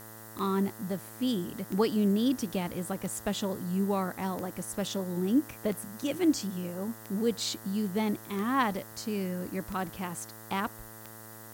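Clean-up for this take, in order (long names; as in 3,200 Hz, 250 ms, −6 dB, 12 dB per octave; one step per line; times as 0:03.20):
click removal
hum removal 110.4 Hz, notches 18
noise reduction from a noise print 28 dB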